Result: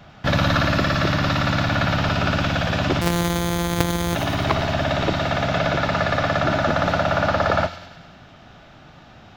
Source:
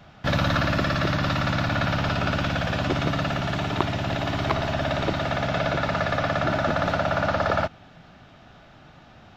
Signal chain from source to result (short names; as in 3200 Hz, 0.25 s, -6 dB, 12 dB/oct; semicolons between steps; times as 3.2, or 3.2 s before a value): 3.01–4.15 sample sorter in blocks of 256 samples; thin delay 99 ms, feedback 59%, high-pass 3000 Hz, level -5.5 dB; spring tank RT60 1.2 s, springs 46 ms, DRR 19 dB; gain +3.5 dB